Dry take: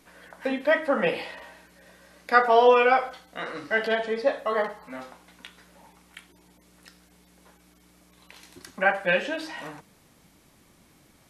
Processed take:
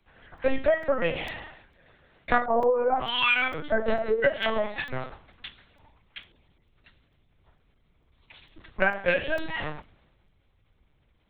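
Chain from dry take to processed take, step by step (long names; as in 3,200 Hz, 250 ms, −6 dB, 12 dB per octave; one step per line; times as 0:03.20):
0:02.45–0:04.90: three-band delay without the direct sound mids, lows, highs 80/510 ms, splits 150/1,300 Hz
linear-prediction vocoder at 8 kHz pitch kept
downward compressor 16 to 1, threshold −29 dBFS, peak gain reduction 18.5 dB
regular buffer underruns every 0.45 s, samples 128, zero, from 0:00.38
multiband upward and downward expander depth 70%
level +8 dB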